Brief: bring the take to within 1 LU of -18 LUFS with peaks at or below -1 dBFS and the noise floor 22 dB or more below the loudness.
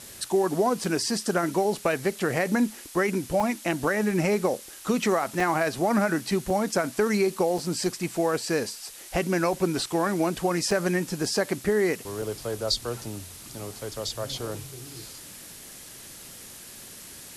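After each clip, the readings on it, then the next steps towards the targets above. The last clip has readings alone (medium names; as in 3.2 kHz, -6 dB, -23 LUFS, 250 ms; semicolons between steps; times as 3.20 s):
dropouts 7; longest dropout 3.3 ms; noise floor -44 dBFS; noise floor target -49 dBFS; loudness -26.5 LUFS; peak level -12.0 dBFS; loudness target -18.0 LUFS
-> interpolate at 0.84/3.40/5.40/6.50/7.58/10.71/12.22 s, 3.3 ms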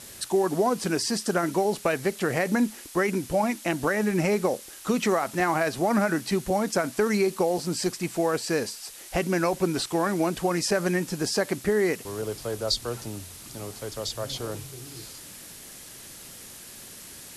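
dropouts 0; noise floor -44 dBFS; noise floor target -49 dBFS
-> noise print and reduce 6 dB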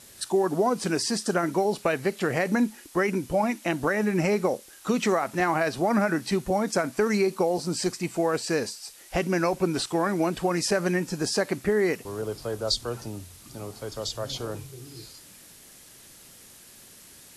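noise floor -50 dBFS; loudness -26.5 LUFS; peak level -12.0 dBFS; loudness target -18.0 LUFS
-> trim +8.5 dB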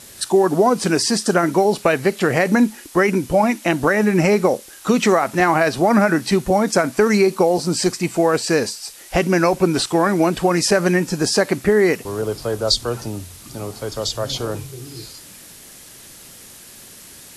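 loudness -18.0 LUFS; peak level -3.5 dBFS; noise floor -42 dBFS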